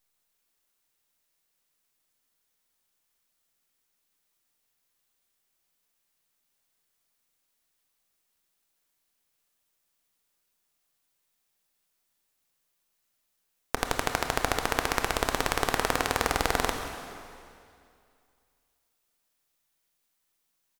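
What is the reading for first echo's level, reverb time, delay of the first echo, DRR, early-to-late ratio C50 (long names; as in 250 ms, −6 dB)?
−18.0 dB, 2.4 s, 184 ms, 4.5 dB, 5.5 dB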